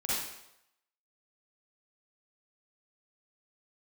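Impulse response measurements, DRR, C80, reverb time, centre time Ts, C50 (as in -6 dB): -9.5 dB, 1.5 dB, 0.85 s, 85 ms, -5.0 dB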